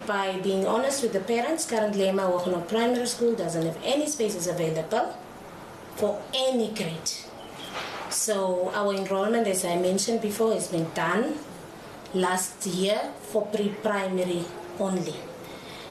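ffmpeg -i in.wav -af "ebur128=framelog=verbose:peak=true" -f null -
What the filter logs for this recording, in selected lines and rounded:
Integrated loudness:
  I:         -26.8 LUFS
  Threshold: -37.3 LUFS
Loudness range:
  LRA:         3.4 LU
  Threshold: -47.2 LUFS
  LRA low:   -29.1 LUFS
  LRA high:  -25.6 LUFS
True peak:
  Peak:      -14.1 dBFS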